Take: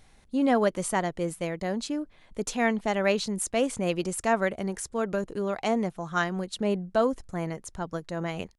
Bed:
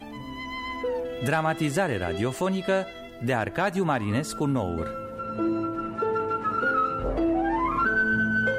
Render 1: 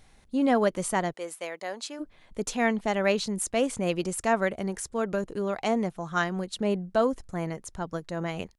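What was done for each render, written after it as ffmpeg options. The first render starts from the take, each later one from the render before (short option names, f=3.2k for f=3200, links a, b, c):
-filter_complex "[0:a]asplit=3[a][b][c];[a]afade=t=out:st=1.12:d=0.02[d];[b]highpass=580,afade=t=in:st=1.12:d=0.02,afade=t=out:st=1.99:d=0.02[e];[c]afade=t=in:st=1.99:d=0.02[f];[d][e][f]amix=inputs=3:normalize=0"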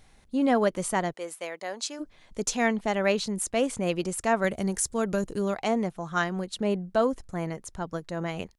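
-filter_complex "[0:a]asettb=1/sr,asplit=3[a][b][c];[a]atrim=end=1.794[d];[b]atrim=start=1.79:end=2.68,asetpts=PTS-STARTPTS,afade=t=in:d=0.004:c=qsin,afade=t=out:st=0.886:d=0.004:c=qsin,equalizer=f=6.1k:t=o:w=1.1:g=7[e];[c]atrim=start=2.676[f];[d][e]acrossfade=d=0.004:c1=hsin:c2=qsin[g];[g][f]acrossfade=d=0.004:c1=qsin:c2=hsin,asettb=1/sr,asplit=3[h][i][j];[h]atrim=end=4.444[k];[i]atrim=start=4.44:end=5.54,asetpts=PTS-STARTPTS,afade=t=in:d=0.004:c=qsin,afade=t=out:st=1.096:d=0.004:c=qsin,bass=f=250:g=5,treble=f=4k:g=9[l];[j]atrim=start=5.536[m];[k][l]acrossfade=d=0.004:c1=hsin:c2=qsin[n];[n][m]acrossfade=d=0.004:c1=qsin:c2=hsin"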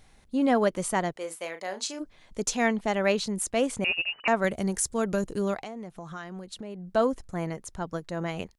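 -filter_complex "[0:a]asettb=1/sr,asplit=3[a][b][c];[a]atrim=end=1.124[d];[b]atrim=start=1.12:end=1.99,asetpts=PTS-STARTPTS,afade=t=in:d=0.004:c=qsin,afade=t=out:st=0.866:d=0.004:c=qsin,asplit=2[e][f];[f]adelay=37,volume=-9dB[g];[e][g]amix=inputs=2:normalize=0,atrim=end_sample=38367[h];[c]atrim=start=1.986[i];[d][h]acrossfade=d=0.004:c1=hsin:c2=qsin[j];[j][i]acrossfade=d=0.004:c1=qsin:c2=hsin,asettb=1/sr,asplit=3[k][l][m];[k]atrim=end=3.844[n];[l]atrim=start=3.84:end=4.28,asetpts=PTS-STARTPTS,afade=t=in:d=0.004:c=qsin,afade=t=out:st=0.436:d=0.004:c=qsin,lowpass=f=2.6k:t=q:w=0.5098,lowpass=f=2.6k:t=q:w=0.6013,lowpass=f=2.6k:t=q:w=0.9,lowpass=f=2.6k:t=q:w=2.563,afreqshift=-3000[o];[m]atrim=start=4.276[p];[n][o]acrossfade=d=0.004:c1=hsin:c2=qsin[q];[q][p]acrossfade=d=0.004:c1=qsin:c2=hsin,asettb=1/sr,asplit=3[r][s][t];[r]atrim=end=5.604[u];[s]atrim=start=5.6:end=6.88,asetpts=PTS-STARTPTS,afade=t=in:d=0.004:c=qsin,afade=t=out:st=1.276:d=0.004:c=qsin,acompressor=threshold=-36dB:ratio=5:attack=3.2:release=140:knee=1:detection=peak[v];[t]atrim=start=6.876[w];[u][v]acrossfade=d=0.004:c1=hsin:c2=qsin[x];[x][w]acrossfade=d=0.004:c1=qsin:c2=hsin"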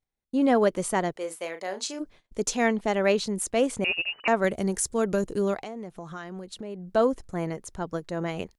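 -af "agate=range=-32dB:threshold=-50dB:ratio=16:detection=peak,equalizer=f=400:w=1.5:g=4"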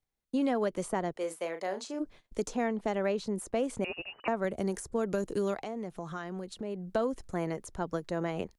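-filter_complex "[0:a]acrossover=split=220|1400[a][b][c];[a]acompressor=threshold=-41dB:ratio=4[d];[b]acompressor=threshold=-29dB:ratio=4[e];[c]acompressor=threshold=-45dB:ratio=4[f];[d][e][f]amix=inputs=3:normalize=0"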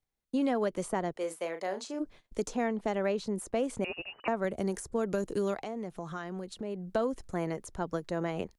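-af anull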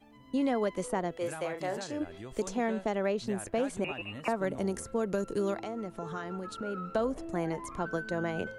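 -filter_complex "[1:a]volume=-18dB[a];[0:a][a]amix=inputs=2:normalize=0"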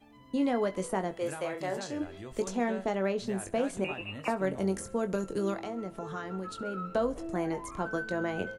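-filter_complex "[0:a]asplit=2[a][b];[b]adelay=21,volume=-9dB[c];[a][c]amix=inputs=2:normalize=0,aecho=1:1:67|134|201|268:0.075|0.0435|0.0252|0.0146"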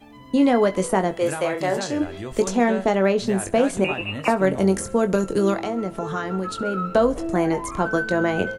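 -af "volume=11dB"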